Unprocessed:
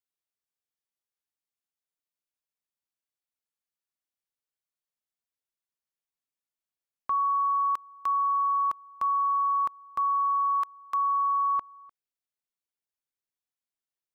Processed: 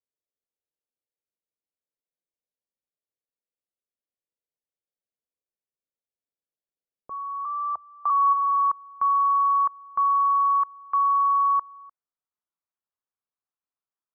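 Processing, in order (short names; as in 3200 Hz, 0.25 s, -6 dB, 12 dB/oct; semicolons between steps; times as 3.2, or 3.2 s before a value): low-pass sweep 520 Hz -> 1200 Hz, 7.25–8.77; 7.45–8.1 frequency shift +45 Hz; 7.11–8.33 spectral gain 620–1300 Hz +7 dB; gain -3 dB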